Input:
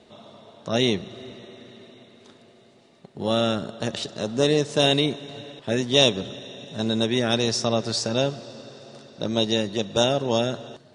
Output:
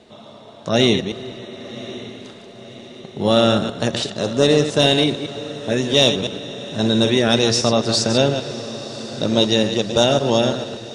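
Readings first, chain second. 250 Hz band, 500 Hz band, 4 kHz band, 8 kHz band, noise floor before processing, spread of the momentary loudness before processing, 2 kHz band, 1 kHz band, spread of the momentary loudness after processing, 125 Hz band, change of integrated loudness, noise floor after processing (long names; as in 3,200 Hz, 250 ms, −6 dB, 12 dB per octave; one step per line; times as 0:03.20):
+6.5 dB, +6.0 dB, +5.5 dB, +6.0 dB, −54 dBFS, 18 LU, +5.5 dB, +6.0 dB, 17 LU, +6.0 dB, +5.5 dB, −41 dBFS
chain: delay that plays each chunk backwards 112 ms, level −8.5 dB
in parallel at −4 dB: soft clipping −12.5 dBFS, distortion −15 dB
on the sum: automatic gain control gain up to 4.5 dB
feedback delay with all-pass diffusion 1,103 ms, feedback 63%, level −16 dB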